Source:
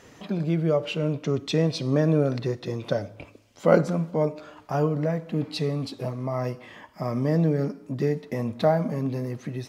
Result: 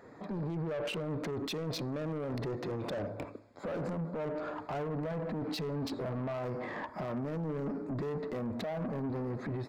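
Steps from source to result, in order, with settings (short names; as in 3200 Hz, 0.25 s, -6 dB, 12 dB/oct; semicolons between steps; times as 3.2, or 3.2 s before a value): Wiener smoothing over 15 samples; low shelf 130 Hz -12 dB; AGC gain up to 12.5 dB; limiter -24 dBFS, peak gain reduction 22 dB; soft clip -32 dBFS, distortion -11 dB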